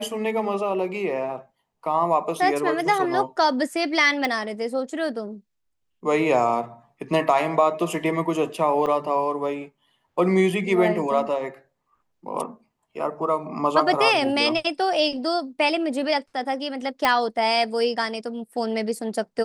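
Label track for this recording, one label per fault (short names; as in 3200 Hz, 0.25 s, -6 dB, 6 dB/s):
4.250000	4.250000	pop -11 dBFS
8.860000	8.870000	gap 5.7 ms
17.050000	17.050000	pop -6 dBFS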